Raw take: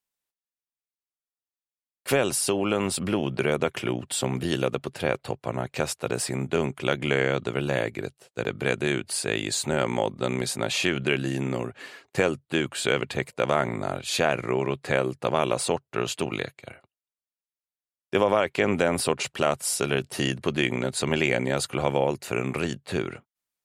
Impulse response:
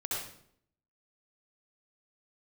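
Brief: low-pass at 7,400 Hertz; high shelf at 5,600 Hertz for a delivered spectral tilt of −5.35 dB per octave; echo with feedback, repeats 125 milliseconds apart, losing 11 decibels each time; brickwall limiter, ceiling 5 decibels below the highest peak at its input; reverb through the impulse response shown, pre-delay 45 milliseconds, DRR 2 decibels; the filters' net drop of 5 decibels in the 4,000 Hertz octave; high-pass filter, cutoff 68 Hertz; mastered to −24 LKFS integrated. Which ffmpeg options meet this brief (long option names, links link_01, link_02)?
-filter_complex "[0:a]highpass=68,lowpass=7400,equalizer=frequency=4000:width_type=o:gain=-5,highshelf=frequency=5600:gain=-4,alimiter=limit=-13dB:level=0:latency=1,aecho=1:1:125|250|375:0.282|0.0789|0.0221,asplit=2[link_01][link_02];[1:a]atrim=start_sample=2205,adelay=45[link_03];[link_02][link_03]afir=irnorm=-1:irlink=0,volume=-6dB[link_04];[link_01][link_04]amix=inputs=2:normalize=0,volume=2dB"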